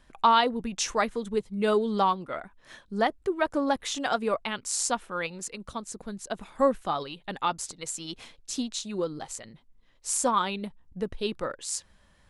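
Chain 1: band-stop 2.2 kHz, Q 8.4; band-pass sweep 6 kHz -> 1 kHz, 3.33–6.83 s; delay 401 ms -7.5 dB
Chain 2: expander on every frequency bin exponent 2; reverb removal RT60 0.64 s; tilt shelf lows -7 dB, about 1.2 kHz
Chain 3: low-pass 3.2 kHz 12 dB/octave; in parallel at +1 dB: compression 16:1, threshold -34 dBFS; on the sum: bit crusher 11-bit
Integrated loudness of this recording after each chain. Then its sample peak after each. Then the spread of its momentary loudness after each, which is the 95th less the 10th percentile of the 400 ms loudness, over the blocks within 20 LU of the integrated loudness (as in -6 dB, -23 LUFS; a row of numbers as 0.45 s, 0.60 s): -37.0 LUFS, -31.5 LUFS, -27.5 LUFS; -15.0 dBFS, -10.0 dBFS, -7.5 dBFS; 19 LU, 22 LU, 14 LU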